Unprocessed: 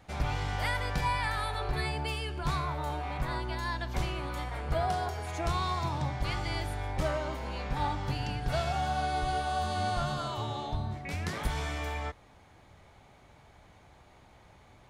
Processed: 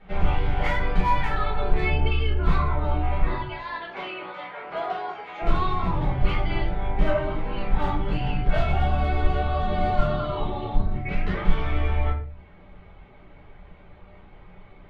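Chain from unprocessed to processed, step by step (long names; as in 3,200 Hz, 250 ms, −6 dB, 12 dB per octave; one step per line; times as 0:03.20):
sub-octave generator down 2 octaves, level −2 dB
0:03.34–0:05.42: high-pass filter 550 Hz 12 dB per octave
reverb reduction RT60 0.63 s
low-pass filter 3,200 Hz 24 dB per octave
hard clipping −24.5 dBFS, distortion −17 dB
rectangular room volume 44 cubic metres, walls mixed, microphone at 1.6 metres
level −2 dB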